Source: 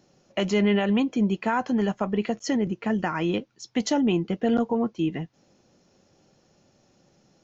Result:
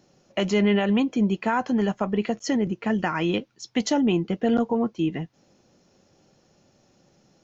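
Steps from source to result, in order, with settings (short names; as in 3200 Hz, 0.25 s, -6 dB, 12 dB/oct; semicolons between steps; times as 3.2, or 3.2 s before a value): 2.86–3.83 dynamic EQ 3100 Hz, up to +3 dB, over -44 dBFS, Q 0.76; gain +1 dB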